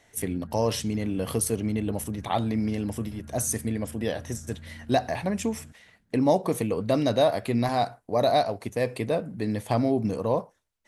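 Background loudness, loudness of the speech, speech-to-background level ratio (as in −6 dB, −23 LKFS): −46.5 LKFS, −27.0 LKFS, 19.5 dB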